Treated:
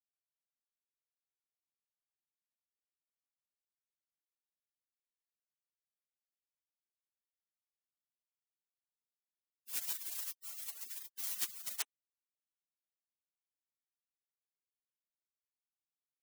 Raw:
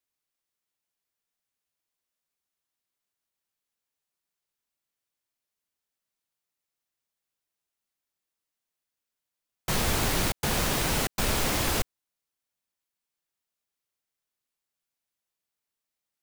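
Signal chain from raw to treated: saturation -23.5 dBFS, distortion -14 dB; spectral gate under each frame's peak -30 dB weak; trim +5 dB

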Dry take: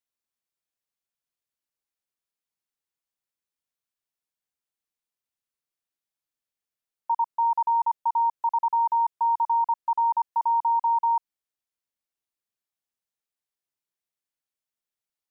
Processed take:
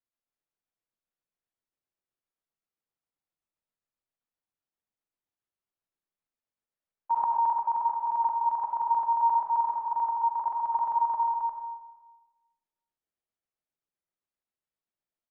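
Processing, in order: low-pass 1.1 kHz 6 dB/octave; square tremolo 7.6 Hz, depth 65%, duty 65%; multi-tap echo 68/175/355/440 ms -14/-11.5/-3.5/-17.5 dB; on a send at -3.5 dB: reverberation RT60 1.2 s, pre-delay 25 ms; 7.11–7.53 s: on the sum: level flattener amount 70%

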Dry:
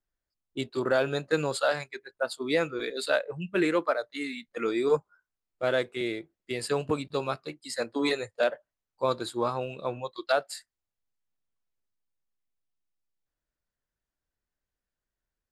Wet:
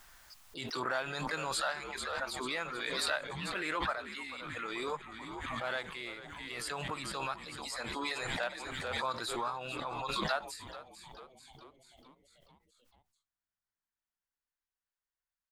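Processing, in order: resonant low shelf 650 Hz -10 dB, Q 1.5; on a send: frequency-shifting echo 439 ms, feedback 61%, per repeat -100 Hz, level -14.5 dB; on the sum: harmony voices +4 st -15 dB; swell ahead of each attack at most 23 dB/s; trim -7 dB

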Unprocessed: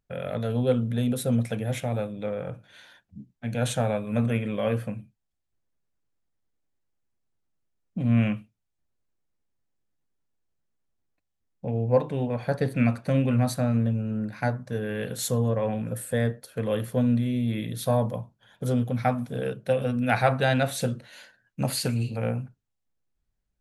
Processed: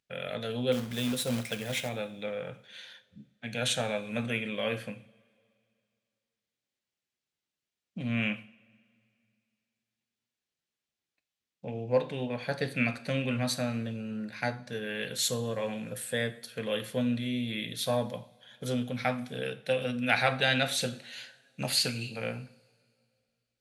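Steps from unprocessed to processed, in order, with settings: frequency weighting D; 0.72–1.89 s: companded quantiser 4-bit; two-slope reverb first 0.48 s, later 2.5 s, from -21 dB, DRR 11 dB; trim -5.5 dB

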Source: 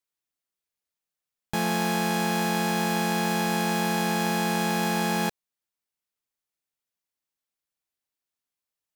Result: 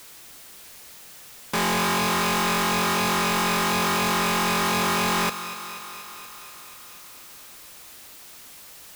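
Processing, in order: integer overflow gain 20 dB; power-law waveshaper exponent 0.35; thinning echo 240 ms, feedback 73%, high-pass 180 Hz, level -12 dB

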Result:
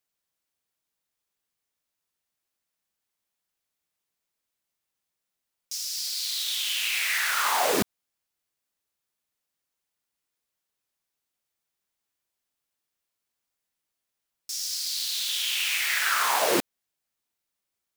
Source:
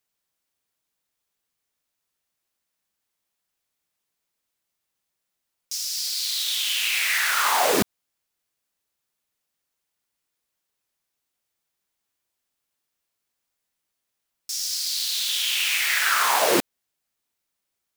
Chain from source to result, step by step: 5.86–6.81 s: bass shelf 110 Hz +11.5 dB; trim -3.5 dB

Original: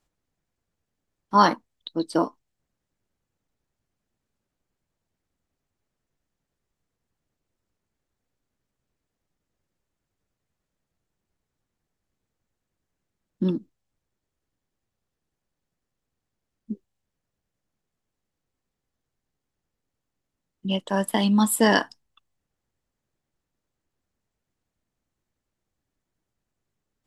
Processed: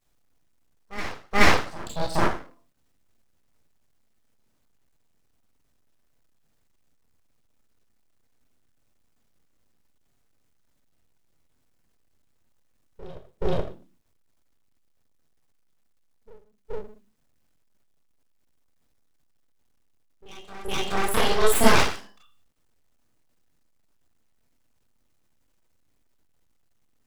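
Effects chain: Schroeder reverb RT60 0.4 s, combs from 25 ms, DRR -5.5 dB; word length cut 12-bit, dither none; bass shelf 190 Hz +4.5 dB; on a send: reverse echo 426 ms -16 dB; on the sum: full-wave rectifier; trim -3 dB

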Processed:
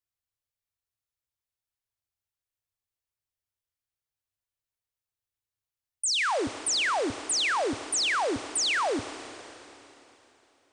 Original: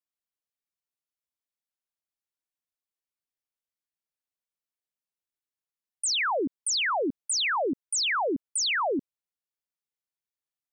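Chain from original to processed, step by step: resonant low shelf 140 Hz +9 dB, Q 3; Schroeder reverb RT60 3.3 s, combs from 28 ms, DRR 10.5 dB

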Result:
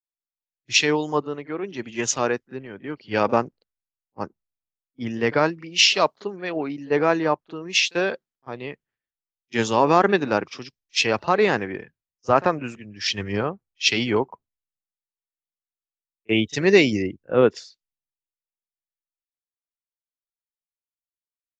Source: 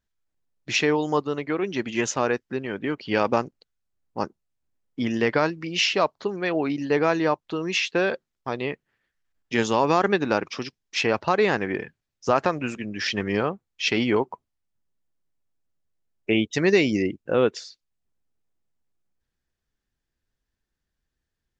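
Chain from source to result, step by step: reverse echo 39 ms -19 dB; three bands expanded up and down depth 100%

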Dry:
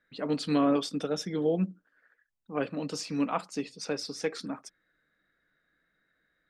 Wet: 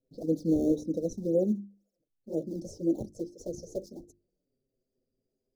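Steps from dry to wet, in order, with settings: gliding tape speed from 105% -> 129%; in parallel at -4.5 dB: decimation with a swept rate 25×, swing 160% 2 Hz; on the sum: touch-sensitive flanger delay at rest 7.9 ms, full sweep at -23 dBFS; elliptic band-stop 510–6100 Hz, stop band 50 dB; resonant high shelf 5.6 kHz -10.5 dB, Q 1.5; hum notches 50/100/150/200/250/300/350 Hz

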